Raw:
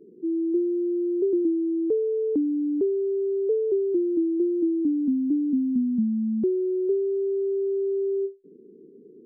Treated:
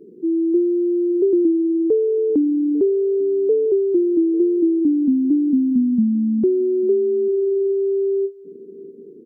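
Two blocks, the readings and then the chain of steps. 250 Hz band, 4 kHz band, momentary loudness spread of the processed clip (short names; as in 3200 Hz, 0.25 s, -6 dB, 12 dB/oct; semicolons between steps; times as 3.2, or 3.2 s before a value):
+6.5 dB, n/a, 2 LU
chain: echo 0.846 s -21.5 dB; gain +6.5 dB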